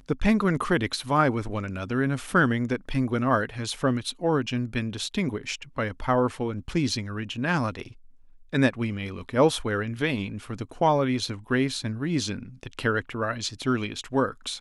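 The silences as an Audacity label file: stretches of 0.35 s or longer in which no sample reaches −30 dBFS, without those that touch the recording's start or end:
7.820000	8.530000	silence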